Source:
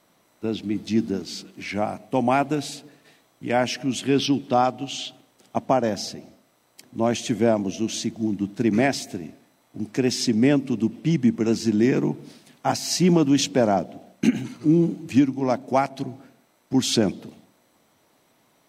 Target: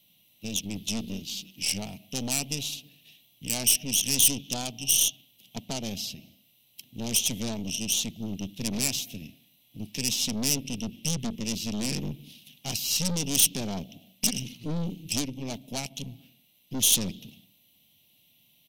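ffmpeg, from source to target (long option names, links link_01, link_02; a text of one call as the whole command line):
ffmpeg -i in.wav -af "firequalizer=gain_entry='entry(170,0);entry(380,-16);entry(650,-13);entry(1400,-26);entry(2800,13);entry(4500,-18);entry(8000,-28);entry(12000,-12)':delay=0.05:min_phase=1,aeval=exprs='(tanh(25.1*val(0)+0.55)-tanh(0.55))/25.1':channel_layout=same,aexciter=amount=13.7:drive=2.3:freq=4100" out.wav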